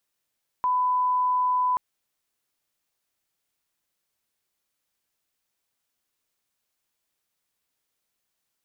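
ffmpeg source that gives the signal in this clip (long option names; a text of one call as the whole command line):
ffmpeg -f lavfi -i "sine=frequency=1000:duration=1.13:sample_rate=44100,volume=-1.94dB" out.wav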